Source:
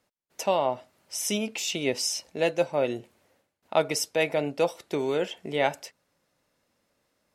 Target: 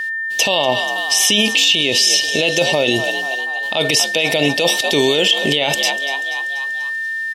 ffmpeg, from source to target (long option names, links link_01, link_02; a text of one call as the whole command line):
ffmpeg -i in.wav -filter_complex "[0:a]acrossover=split=3400[link_01][link_02];[link_02]acompressor=threshold=-43dB:ratio=4:attack=1:release=60[link_03];[link_01][link_03]amix=inputs=2:normalize=0,highshelf=frequency=2300:width_type=q:width=3:gain=11,asplit=6[link_04][link_05][link_06][link_07][link_08][link_09];[link_05]adelay=242,afreqshift=65,volume=-18dB[link_10];[link_06]adelay=484,afreqshift=130,volume=-22.4dB[link_11];[link_07]adelay=726,afreqshift=195,volume=-26.9dB[link_12];[link_08]adelay=968,afreqshift=260,volume=-31.3dB[link_13];[link_09]adelay=1210,afreqshift=325,volume=-35.7dB[link_14];[link_04][link_10][link_11][link_12][link_13][link_14]amix=inputs=6:normalize=0,aeval=exprs='val(0)+0.0126*sin(2*PI*1800*n/s)':channel_layout=same,alimiter=level_in=21.5dB:limit=-1dB:release=50:level=0:latency=1,volume=-3.5dB" out.wav